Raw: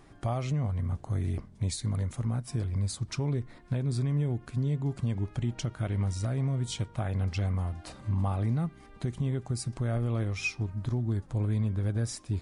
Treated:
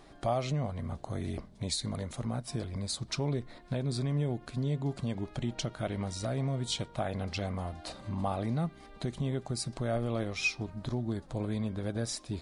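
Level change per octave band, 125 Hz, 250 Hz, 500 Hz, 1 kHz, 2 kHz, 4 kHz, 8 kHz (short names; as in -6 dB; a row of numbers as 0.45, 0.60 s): -6.0, -1.0, +3.0, +3.0, +1.5, +4.5, +1.0 dB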